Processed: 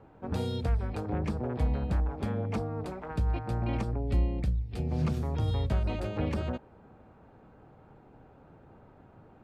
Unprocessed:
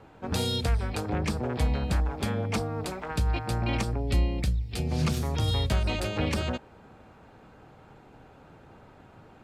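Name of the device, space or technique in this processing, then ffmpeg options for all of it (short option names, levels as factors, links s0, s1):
through cloth: -af "highshelf=f=2100:g=-15.5,volume=0.794"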